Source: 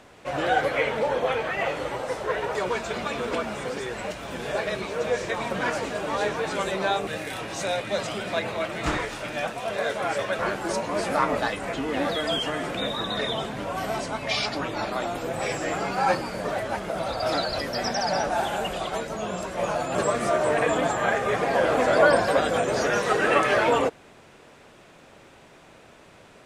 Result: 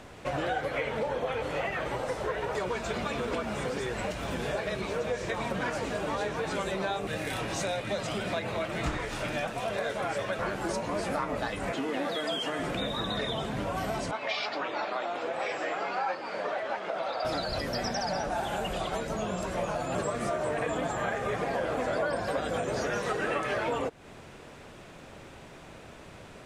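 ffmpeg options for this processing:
-filter_complex "[0:a]asettb=1/sr,asplit=3[s0][s1][s2];[s0]atrim=end=11.724[s3];[s1]atrim=start=11.72:end=12.59,asetpts=PTS-STARTPTS,afade=t=in:d=0.004:c=qsin,afade=t=out:st=0.866:d=0.004:c=qsin,highpass=230[s4];[s2]atrim=start=12.586[s5];[s3][s4]acrossfade=d=0.004:c1=hsin:c2=qsin[s6];[s6][s5]acrossfade=d=0.004:c1=qsin:c2=hsin,asettb=1/sr,asplit=3[s7][s8][s9];[s7]atrim=end=14.114[s10];[s8]atrim=start=14.11:end=17.25,asetpts=PTS-STARTPTS,afade=t=in:d=0.004:c=qsin,afade=t=out:st=3.136:d=0.004:c=qsin,highpass=480,lowpass=3900[s11];[s9]atrim=start=17.246[s12];[s10][s11]acrossfade=d=0.004:c1=hsin:c2=qsin[s13];[s13][s12]acrossfade=d=0.004:c1=qsin:c2=hsin,asplit=3[s14][s15][s16];[s14]atrim=end=1.422[s17];[s15]atrim=start=1.418:end=1.862,asetpts=PTS-STARTPTS,areverse[s18];[s16]atrim=start=1.858[s19];[s17][s18]acrossfade=d=0.004:c1=hsin:c2=hsin[s20];[s20][s19]acrossfade=d=0.004:c1=hsin:c2=hsin,lowshelf=f=160:g=8,acompressor=threshold=0.0282:ratio=4,volume=1.19"

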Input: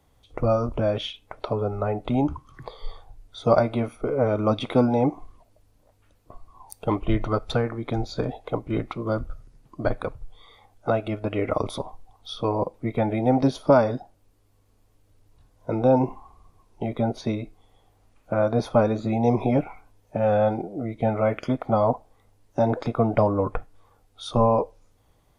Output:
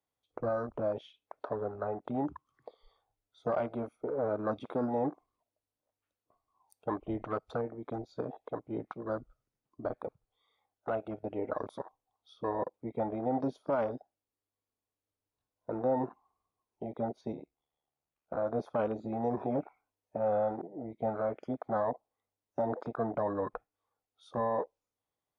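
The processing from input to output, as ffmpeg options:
-filter_complex "[0:a]asettb=1/sr,asplit=3[s0][s1][s2];[s0]atrim=end=17.324[s3];[s1]atrim=start=17.32:end=18.37,asetpts=PTS-STARTPTS,afade=t=in:d=0.004:c=qsin,afade=t=out:st=1.046:d=0.004:c=qsin,aeval=exprs='val(0)*sin(2*PI*37*n/s)':c=same[s4];[s2]atrim=start=18.366[s5];[s3][s4]acrossfade=d=0.004:c1=hsin:c2=qsin[s6];[s6][s5]acrossfade=d=0.004:c1=qsin:c2=hsin,highpass=f=360:p=1,afwtdn=0.0251,alimiter=limit=0.168:level=0:latency=1:release=29,volume=0.473"

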